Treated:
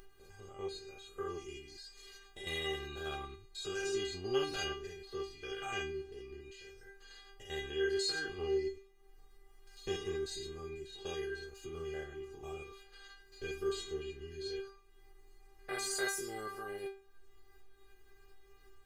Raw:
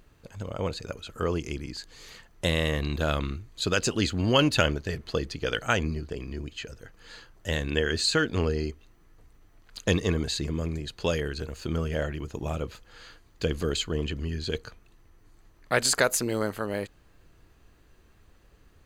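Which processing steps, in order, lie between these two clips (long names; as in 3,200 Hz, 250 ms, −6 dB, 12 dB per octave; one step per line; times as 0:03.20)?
spectrum averaged block by block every 100 ms
stiff-string resonator 390 Hz, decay 0.34 s, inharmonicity 0.002
upward compression, threshold −57 dBFS
level +8.5 dB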